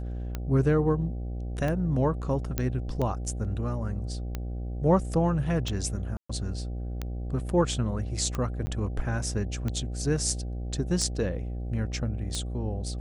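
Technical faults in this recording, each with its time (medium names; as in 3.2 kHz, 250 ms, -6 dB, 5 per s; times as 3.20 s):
buzz 60 Hz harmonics 13 -33 dBFS
tick 45 rpm -18 dBFS
2.58 s: pop -12 dBFS
6.17–6.29 s: dropout 125 ms
8.66–8.67 s: dropout 10 ms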